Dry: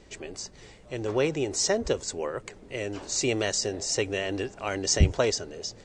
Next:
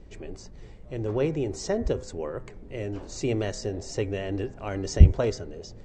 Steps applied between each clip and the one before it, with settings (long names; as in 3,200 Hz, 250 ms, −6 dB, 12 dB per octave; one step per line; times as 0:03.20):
spectral tilt −3 dB per octave
hum removal 127.2 Hz, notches 19
level −4 dB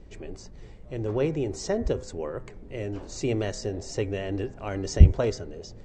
no processing that can be heard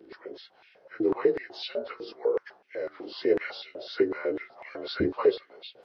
partials spread apart or drawn together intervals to 88%
high-pass on a step sequencer 8 Hz 340–2,400 Hz